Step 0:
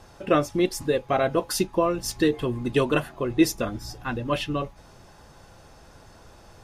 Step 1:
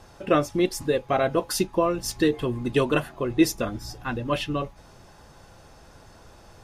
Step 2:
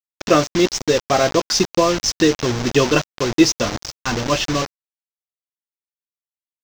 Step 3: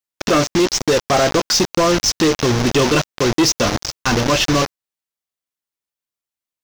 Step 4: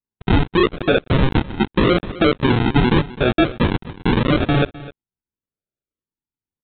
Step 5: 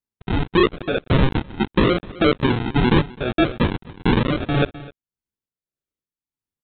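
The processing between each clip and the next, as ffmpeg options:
-af anull
-af "acrusher=bits=4:mix=0:aa=0.000001,highshelf=f=7900:t=q:w=3:g=-11.5,volume=2"
-filter_complex "[0:a]asplit=2[s0][s1];[s1]alimiter=limit=0.251:level=0:latency=1:release=36,volume=0.944[s2];[s0][s2]amix=inputs=2:normalize=0,volume=3.35,asoftclip=hard,volume=0.299"
-af "aresample=8000,acrusher=samples=11:mix=1:aa=0.000001:lfo=1:lforange=6.6:lforate=0.83,aresample=44100,aecho=1:1:257:0.126"
-af "tremolo=f=1.7:d=0.58"

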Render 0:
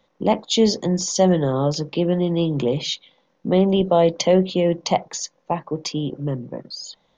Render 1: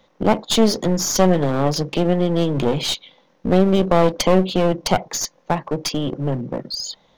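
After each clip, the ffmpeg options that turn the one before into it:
-filter_complex "[0:a]asplit=2[s0][s1];[s1]acompressor=threshold=0.0501:ratio=6,volume=0.75[s2];[s0][s2]amix=inputs=2:normalize=0,aeval=exprs='clip(val(0),-1,0.0596)':c=same,volume=1.26"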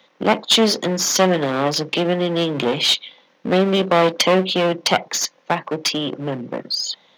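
-filter_complex "[0:a]highpass=200,acrossover=split=840|3500[s0][s1][s2];[s1]crystalizer=i=7.5:c=0[s3];[s0][s3][s2]amix=inputs=3:normalize=0"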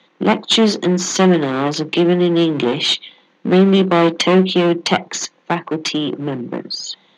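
-af "highpass=110,equalizer=f=110:t=q:w=4:g=6,equalizer=f=190:t=q:w=4:g=7,equalizer=f=340:t=q:w=4:g=8,equalizer=f=570:t=q:w=4:g=-5,equalizer=f=5300:t=q:w=4:g=-8,lowpass=f=8000:w=0.5412,lowpass=f=8000:w=1.3066,volume=1.12"

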